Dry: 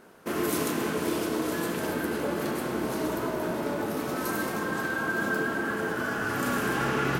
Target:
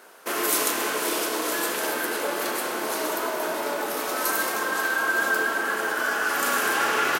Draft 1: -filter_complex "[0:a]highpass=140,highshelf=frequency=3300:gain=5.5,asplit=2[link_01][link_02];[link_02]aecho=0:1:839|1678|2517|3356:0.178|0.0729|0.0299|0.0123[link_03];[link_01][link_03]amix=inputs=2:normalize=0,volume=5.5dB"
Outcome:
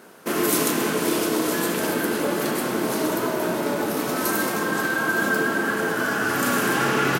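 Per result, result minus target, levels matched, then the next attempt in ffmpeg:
125 Hz band +17.0 dB; echo 335 ms late
-filter_complex "[0:a]highpass=530,highshelf=frequency=3300:gain=5.5,asplit=2[link_01][link_02];[link_02]aecho=0:1:839|1678|2517|3356:0.178|0.0729|0.0299|0.0123[link_03];[link_01][link_03]amix=inputs=2:normalize=0,volume=5.5dB"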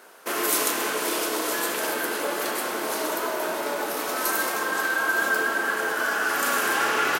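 echo 335 ms late
-filter_complex "[0:a]highpass=530,highshelf=frequency=3300:gain=5.5,asplit=2[link_01][link_02];[link_02]aecho=0:1:504|1008|1512|2016:0.178|0.0729|0.0299|0.0123[link_03];[link_01][link_03]amix=inputs=2:normalize=0,volume=5.5dB"

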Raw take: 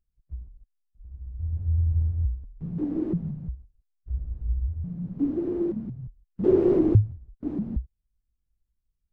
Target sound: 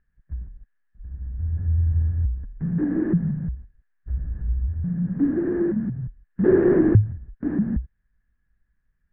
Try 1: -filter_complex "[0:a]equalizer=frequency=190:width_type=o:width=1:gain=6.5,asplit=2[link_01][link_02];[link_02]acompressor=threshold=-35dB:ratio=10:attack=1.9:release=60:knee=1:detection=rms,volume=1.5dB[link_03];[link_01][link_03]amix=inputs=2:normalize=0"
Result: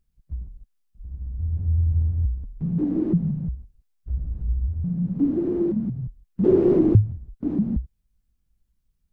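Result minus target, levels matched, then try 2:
2,000 Hz band −15.5 dB
-filter_complex "[0:a]lowpass=frequency=1700:width_type=q:width=13,equalizer=frequency=190:width_type=o:width=1:gain=6.5,asplit=2[link_01][link_02];[link_02]acompressor=threshold=-35dB:ratio=10:attack=1.9:release=60:knee=1:detection=rms,volume=1.5dB[link_03];[link_01][link_03]amix=inputs=2:normalize=0"

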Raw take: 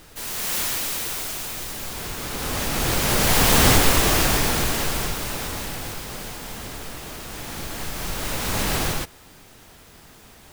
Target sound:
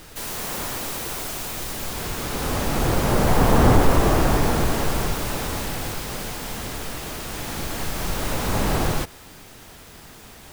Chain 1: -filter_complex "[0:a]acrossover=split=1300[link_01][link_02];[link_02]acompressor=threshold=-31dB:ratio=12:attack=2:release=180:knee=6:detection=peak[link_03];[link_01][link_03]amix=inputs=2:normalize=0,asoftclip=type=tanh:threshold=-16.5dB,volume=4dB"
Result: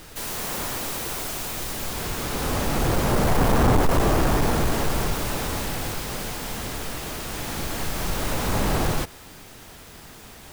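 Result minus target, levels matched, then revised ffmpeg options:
soft clipping: distortion +14 dB
-filter_complex "[0:a]acrossover=split=1300[link_01][link_02];[link_02]acompressor=threshold=-31dB:ratio=12:attack=2:release=180:knee=6:detection=peak[link_03];[link_01][link_03]amix=inputs=2:normalize=0,asoftclip=type=tanh:threshold=-6.5dB,volume=4dB"

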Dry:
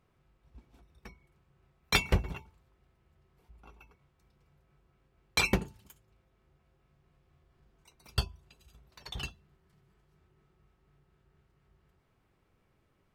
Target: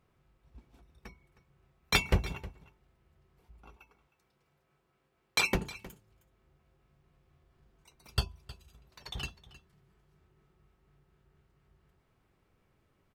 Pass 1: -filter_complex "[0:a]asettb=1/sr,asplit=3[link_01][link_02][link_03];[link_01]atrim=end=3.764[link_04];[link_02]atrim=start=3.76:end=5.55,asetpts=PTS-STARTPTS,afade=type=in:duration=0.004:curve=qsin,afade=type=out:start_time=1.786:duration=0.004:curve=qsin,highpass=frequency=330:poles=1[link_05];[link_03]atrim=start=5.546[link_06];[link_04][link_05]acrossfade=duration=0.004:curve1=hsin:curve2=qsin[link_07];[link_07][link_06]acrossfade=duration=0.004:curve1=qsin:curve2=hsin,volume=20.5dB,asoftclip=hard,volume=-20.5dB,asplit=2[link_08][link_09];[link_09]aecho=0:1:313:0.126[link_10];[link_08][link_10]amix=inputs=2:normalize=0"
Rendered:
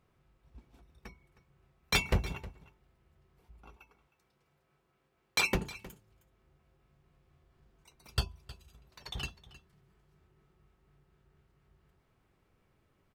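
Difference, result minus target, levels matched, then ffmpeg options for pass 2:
gain into a clipping stage and back: distortion +21 dB
-filter_complex "[0:a]asettb=1/sr,asplit=3[link_01][link_02][link_03];[link_01]atrim=end=3.764[link_04];[link_02]atrim=start=3.76:end=5.55,asetpts=PTS-STARTPTS,afade=type=in:duration=0.004:curve=qsin,afade=type=out:start_time=1.786:duration=0.004:curve=qsin,highpass=frequency=330:poles=1[link_05];[link_03]atrim=start=5.546[link_06];[link_04][link_05]acrossfade=duration=0.004:curve1=hsin:curve2=qsin[link_07];[link_07][link_06]acrossfade=duration=0.004:curve1=qsin:curve2=hsin,volume=14dB,asoftclip=hard,volume=-14dB,asplit=2[link_08][link_09];[link_09]aecho=0:1:313:0.126[link_10];[link_08][link_10]amix=inputs=2:normalize=0"

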